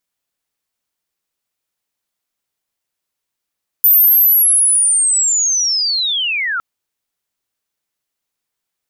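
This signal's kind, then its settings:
glide linear 14,000 Hz → 1,300 Hz −6 dBFS → −16.5 dBFS 2.76 s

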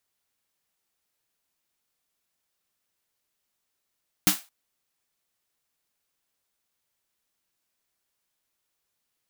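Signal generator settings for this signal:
synth snare length 0.22 s, tones 190 Hz, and 300 Hz, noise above 690 Hz, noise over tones 3.5 dB, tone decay 0.14 s, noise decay 0.27 s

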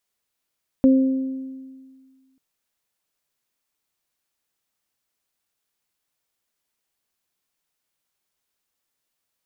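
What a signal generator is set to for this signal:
harmonic partials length 1.54 s, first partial 264 Hz, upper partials −9.5 dB, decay 1.79 s, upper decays 1.11 s, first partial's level −10 dB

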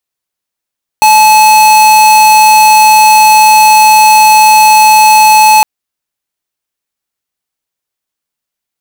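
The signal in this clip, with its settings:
tone square 861 Hz −3.5 dBFS 4.61 s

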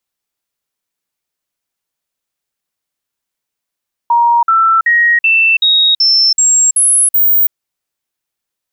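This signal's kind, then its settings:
stepped sweep 943 Hz up, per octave 2, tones 9, 0.33 s, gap 0.05 s −6.5 dBFS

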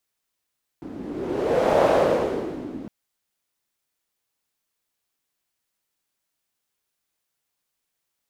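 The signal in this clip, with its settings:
wind from filtered noise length 2.06 s, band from 270 Hz, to 590 Hz, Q 3.3, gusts 1, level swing 18 dB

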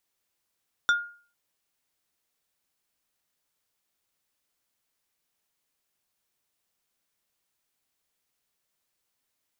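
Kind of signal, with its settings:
struck wood plate, lowest mode 1,420 Hz, decay 0.43 s, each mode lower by 7.5 dB, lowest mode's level −16 dB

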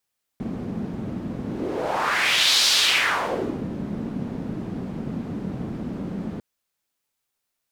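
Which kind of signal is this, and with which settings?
pass-by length 6.00 s, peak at 0:02.27, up 1.35 s, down 1.07 s, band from 210 Hz, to 4,300 Hz, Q 2.3, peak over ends 12 dB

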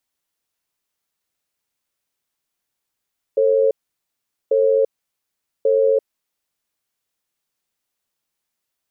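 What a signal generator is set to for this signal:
tone pair in a cadence 446 Hz, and 541 Hz, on 0.34 s, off 0.80 s, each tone −15.5 dBFS 3.42 s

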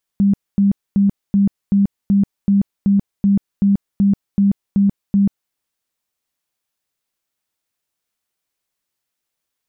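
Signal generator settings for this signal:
tone bursts 199 Hz, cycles 27, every 0.38 s, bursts 14, −10 dBFS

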